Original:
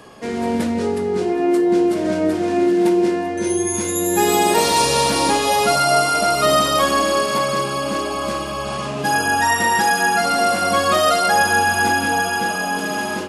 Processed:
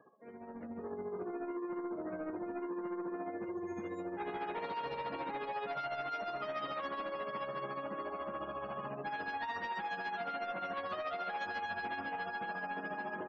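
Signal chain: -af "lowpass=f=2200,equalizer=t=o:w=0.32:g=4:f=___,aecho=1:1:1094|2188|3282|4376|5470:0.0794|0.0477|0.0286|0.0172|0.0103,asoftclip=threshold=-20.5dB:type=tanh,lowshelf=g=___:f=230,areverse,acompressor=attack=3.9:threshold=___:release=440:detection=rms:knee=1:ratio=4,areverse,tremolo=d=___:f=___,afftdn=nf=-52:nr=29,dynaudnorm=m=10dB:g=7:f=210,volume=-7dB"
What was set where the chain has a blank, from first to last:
170, -9, -41dB, 0.48, 14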